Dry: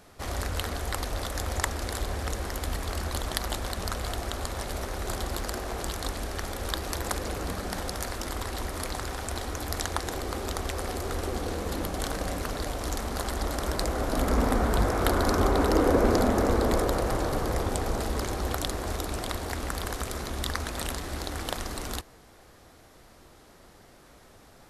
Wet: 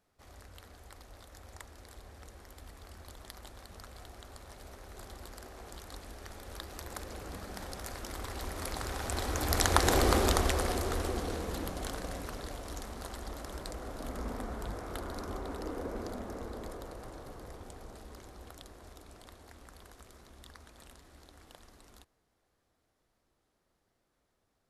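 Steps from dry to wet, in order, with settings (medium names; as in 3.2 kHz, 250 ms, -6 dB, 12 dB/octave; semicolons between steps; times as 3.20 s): Doppler pass-by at 10.03 s, 7 m/s, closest 2.4 m; trim +7.5 dB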